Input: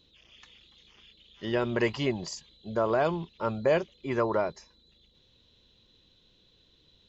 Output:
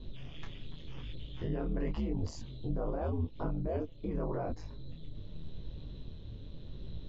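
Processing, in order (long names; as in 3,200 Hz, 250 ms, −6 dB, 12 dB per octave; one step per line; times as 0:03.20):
0:02.06–0:04.31: parametric band 1,800 Hz −4 dB 0.97 octaves
ring modulation 78 Hz
spectral tilt −4.5 dB per octave
downward compressor 4 to 1, threshold −37 dBFS, peak gain reduction 17.5 dB
brickwall limiter −36.5 dBFS, peak gain reduction 11.5 dB
micro pitch shift up and down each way 30 cents
level +14.5 dB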